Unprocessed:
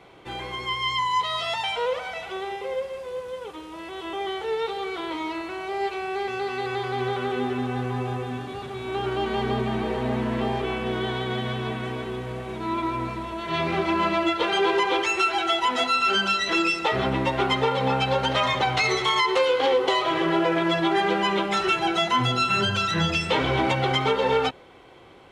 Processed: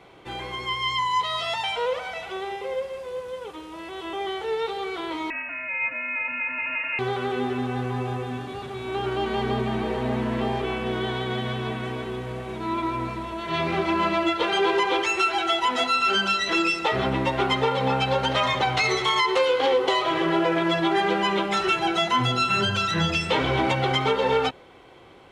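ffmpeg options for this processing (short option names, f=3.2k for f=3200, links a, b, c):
-filter_complex "[0:a]asettb=1/sr,asplit=3[a][b][c];[a]atrim=end=5.304[d];[b]atrim=start=5.3:end=6.99,asetpts=PTS-STARTPTS,afade=t=in:d=0.004:c=qsin,afade=t=out:st=1.686:d=0.004:c=qsin,lowpass=f=2.5k:t=q:w=0.5098,lowpass=f=2.5k:t=q:w=0.6013,lowpass=f=2.5k:t=q:w=0.9,lowpass=f=2.5k:t=q:w=2.563,afreqshift=-2900[e];[c]atrim=start=6.986[f];[d][e]acrossfade=d=0.004:c1=hsin:c2=qsin[g];[g][f]acrossfade=d=0.004:c1=qsin:c2=hsin"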